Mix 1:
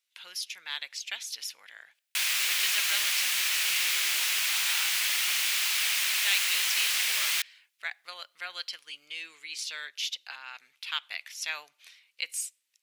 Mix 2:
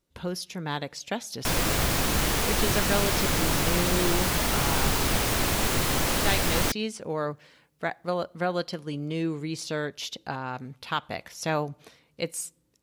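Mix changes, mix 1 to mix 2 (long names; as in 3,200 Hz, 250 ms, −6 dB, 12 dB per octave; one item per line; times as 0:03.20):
background: entry −0.70 s
master: remove high-pass with resonance 2,400 Hz, resonance Q 1.7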